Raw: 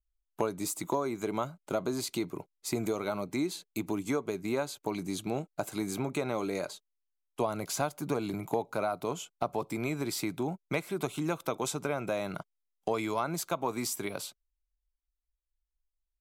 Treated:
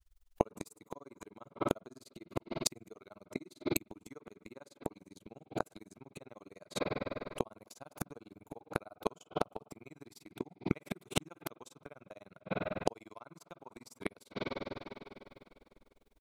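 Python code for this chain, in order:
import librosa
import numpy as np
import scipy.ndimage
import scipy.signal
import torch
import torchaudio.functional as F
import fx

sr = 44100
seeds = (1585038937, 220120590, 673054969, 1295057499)

y = fx.rev_spring(x, sr, rt60_s=2.7, pass_ms=(32, 50, 59), chirp_ms=35, drr_db=10.0)
y = fx.granulator(y, sr, seeds[0], grain_ms=42.0, per_s=20.0, spray_ms=11.0, spread_st=0)
y = fx.gate_flip(y, sr, shuts_db=-31.0, range_db=-35)
y = y * librosa.db_to_amplitude(18.0)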